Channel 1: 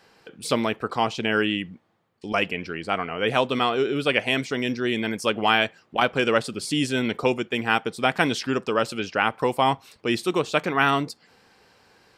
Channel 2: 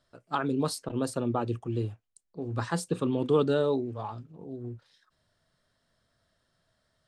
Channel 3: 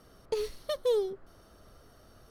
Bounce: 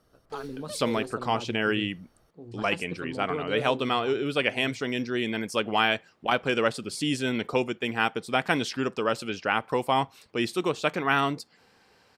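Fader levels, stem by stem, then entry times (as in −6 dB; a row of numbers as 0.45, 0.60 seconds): −3.5, −9.5, −8.5 decibels; 0.30, 0.00, 0.00 seconds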